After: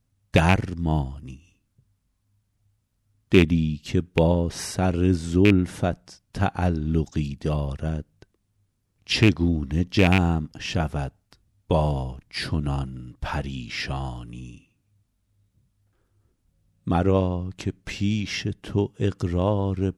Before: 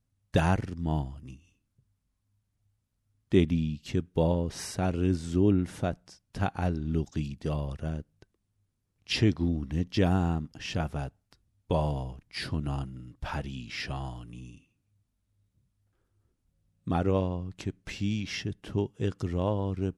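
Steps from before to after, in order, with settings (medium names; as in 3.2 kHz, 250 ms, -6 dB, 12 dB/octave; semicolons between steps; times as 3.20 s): rattle on loud lows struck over -22 dBFS, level -15 dBFS; trim +6 dB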